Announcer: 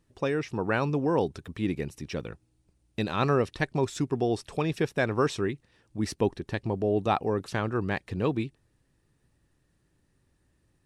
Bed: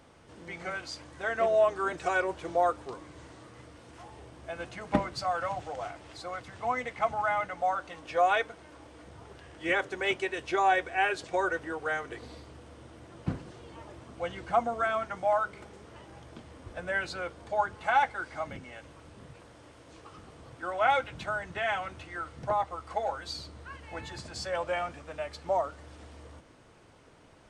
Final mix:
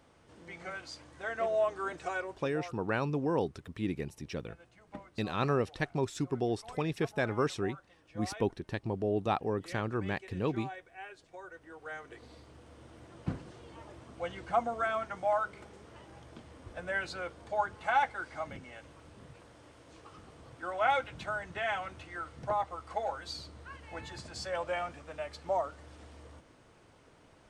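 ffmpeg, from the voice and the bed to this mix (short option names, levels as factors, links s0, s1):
-filter_complex "[0:a]adelay=2200,volume=0.562[s0];[1:a]volume=3.55,afade=t=out:st=1.96:d=0.67:silence=0.199526,afade=t=in:st=11.5:d=1.49:silence=0.149624[s1];[s0][s1]amix=inputs=2:normalize=0"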